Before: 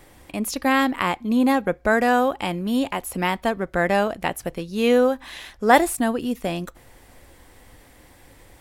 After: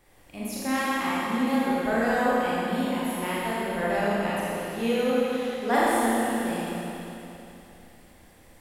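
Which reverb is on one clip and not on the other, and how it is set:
four-comb reverb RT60 3.1 s, combs from 27 ms, DRR −8.5 dB
level −13 dB

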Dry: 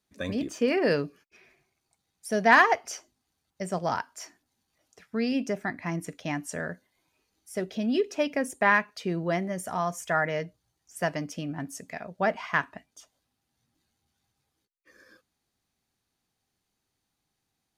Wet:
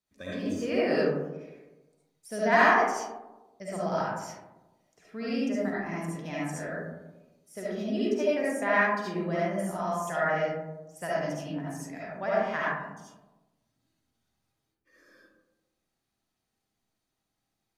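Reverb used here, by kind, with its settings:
comb and all-pass reverb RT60 1.1 s, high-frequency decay 0.3×, pre-delay 30 ms, DRR −8 dB
level −10 dB

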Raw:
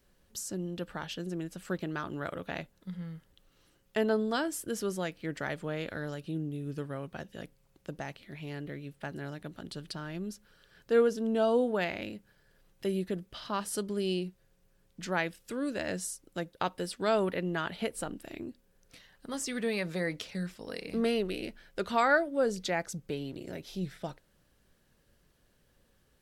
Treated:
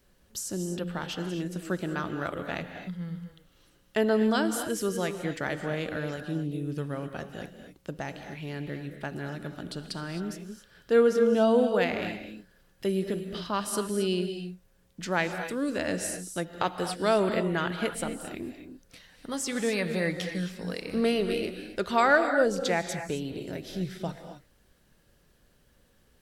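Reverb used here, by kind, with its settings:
reverb whose tail is shaped and stops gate 290 ms rising, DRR 7 dB
level +3.5 dB

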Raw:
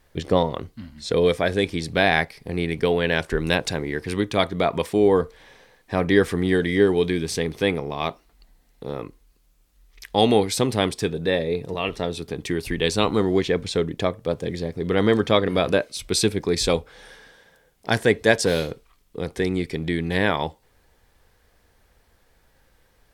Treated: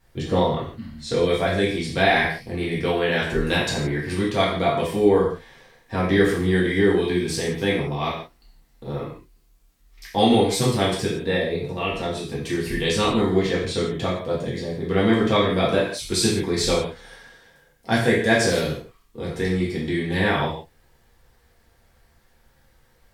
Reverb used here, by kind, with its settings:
reverb whose tail is shaped and stops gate 200 ms falling, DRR −6.5 dB
level −6.5 dB

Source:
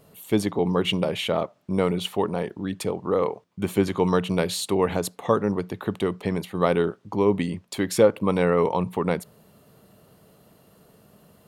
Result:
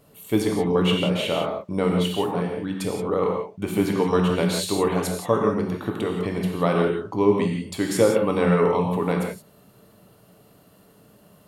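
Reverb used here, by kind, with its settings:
reverb whose tail is shaped and stops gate 200 ms flat, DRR 0 dB
level −1.5 dB

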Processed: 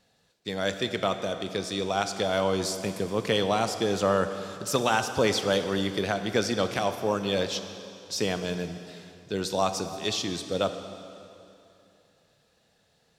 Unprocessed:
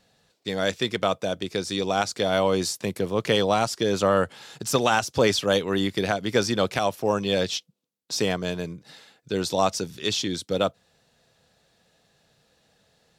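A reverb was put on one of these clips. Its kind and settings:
dense smooth reverb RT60 2.8 s, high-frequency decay 0.9×, DRR 8 dB
level −3.5 dB

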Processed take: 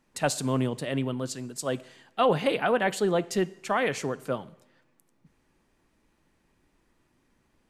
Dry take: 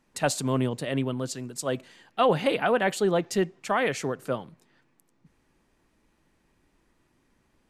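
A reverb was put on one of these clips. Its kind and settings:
coupled-rooms reverb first 0.81 s, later 2.2 s, from −24 dB, DRR 17.5 dB
level −1 dB

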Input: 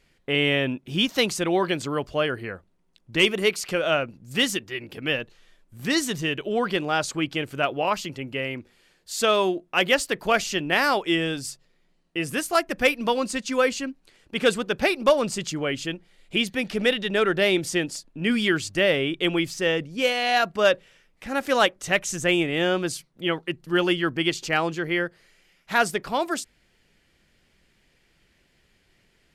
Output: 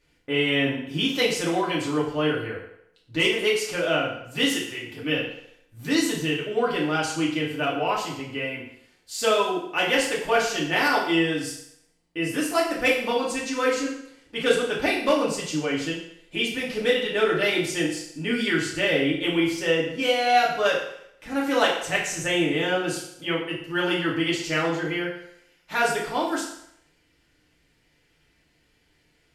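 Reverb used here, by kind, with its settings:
feedback delay network reverb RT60 0.74 s, low-frequency decay 0.8×, high-frequency decay 0.9×, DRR −5.5 dB
level −7 dB

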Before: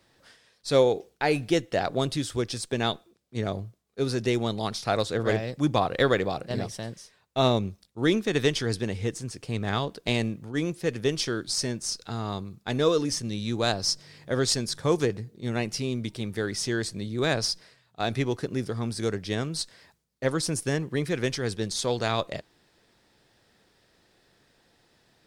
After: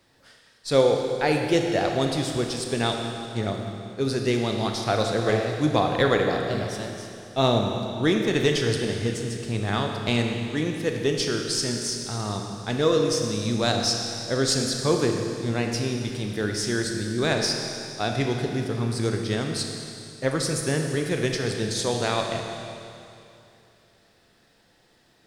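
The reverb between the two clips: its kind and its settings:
four-comb reverb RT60 2.7 s, combs from 26 ms, DRR 2.5 dB
level +1 dB

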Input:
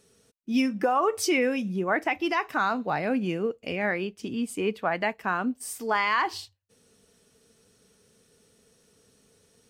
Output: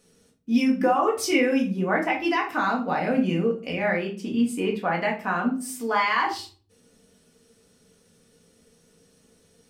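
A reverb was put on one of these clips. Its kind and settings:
rectangular room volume 270 cubic metres, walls furnished, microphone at 1.9 metres
level −1.5 dB

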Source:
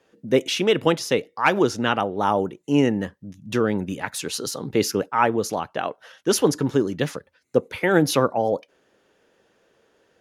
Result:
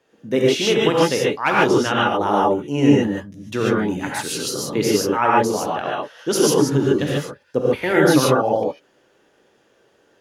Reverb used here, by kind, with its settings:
reverb whose tail is shaped and stops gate 170 ms rising, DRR −4.5 dB
level −2 dB

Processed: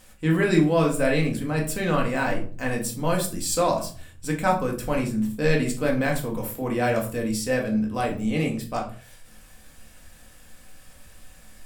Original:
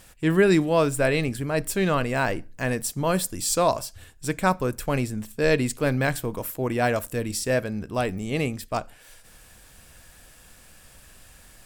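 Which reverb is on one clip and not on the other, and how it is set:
rectangular room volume 320 cubic metres, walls furnished, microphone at 2 metres
level −4 dB

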